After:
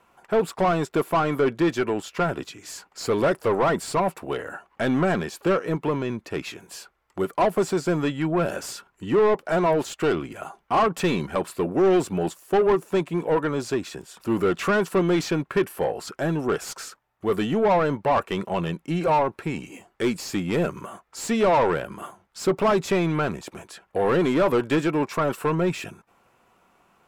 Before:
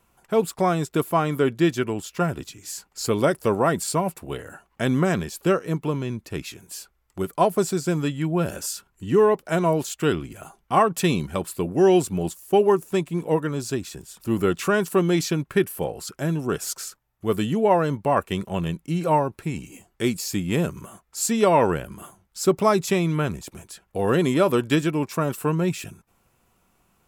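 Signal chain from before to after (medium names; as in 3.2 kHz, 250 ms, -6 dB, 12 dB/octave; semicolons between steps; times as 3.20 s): overdrive pedal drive 22 dB, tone 1.3 kHz, clips at -6 dBFS; trim -5 dB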